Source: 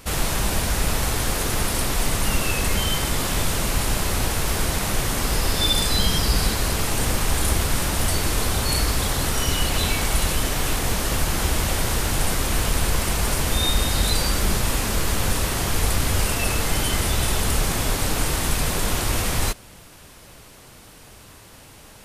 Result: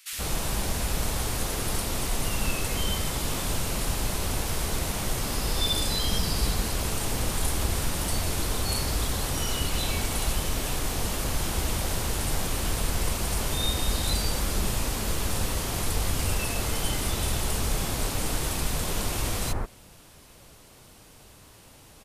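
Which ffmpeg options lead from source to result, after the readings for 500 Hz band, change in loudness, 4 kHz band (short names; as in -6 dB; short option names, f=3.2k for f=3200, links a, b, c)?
-5.5 dB, -6.0 dB, -6.0 dB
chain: -filter_complex "[0:a]acrossover=split=1700[a][b];[a]adelay=130[c];[c][b]amix=inputs=2:normalize=0,volume=-5.5dB"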